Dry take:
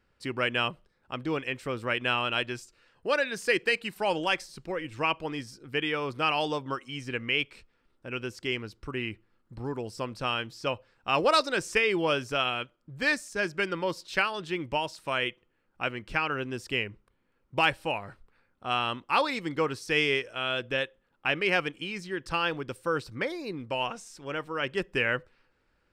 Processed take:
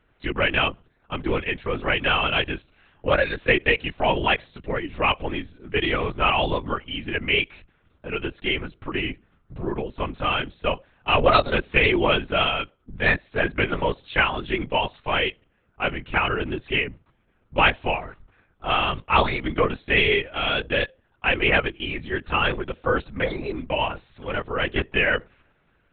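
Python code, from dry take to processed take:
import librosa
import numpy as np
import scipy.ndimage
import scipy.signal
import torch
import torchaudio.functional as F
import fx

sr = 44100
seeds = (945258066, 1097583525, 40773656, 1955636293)

y = fx.lpc_vocoder(x, sr, seeds[0], excitation='whisper', order=10)
y = y * 10.0 ** (6.5 / 20.0)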